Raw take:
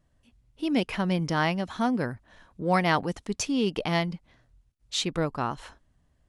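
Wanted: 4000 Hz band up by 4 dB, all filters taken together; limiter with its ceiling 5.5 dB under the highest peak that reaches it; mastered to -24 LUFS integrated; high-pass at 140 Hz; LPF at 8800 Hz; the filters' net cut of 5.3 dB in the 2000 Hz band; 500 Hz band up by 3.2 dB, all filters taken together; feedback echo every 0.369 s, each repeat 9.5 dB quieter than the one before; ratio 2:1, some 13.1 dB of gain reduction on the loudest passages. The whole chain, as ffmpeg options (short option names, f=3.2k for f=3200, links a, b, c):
-af "highpass=140,lowpass=8.8k,equalizer=f=500:t=o:g=4.5,equalizer=f=2k:t=o:g=-9,equalizer=f=4k:t=o:g=8,acompressor=threshold=-44dB:ratio=2,alimiter=level_in=4dB:limit=-24dB:level=0:latency=1,volume=-4dB,aecho=1:1:369|738|1107|1476:0.335|0.111|0.0365|0.012,volume=16dB"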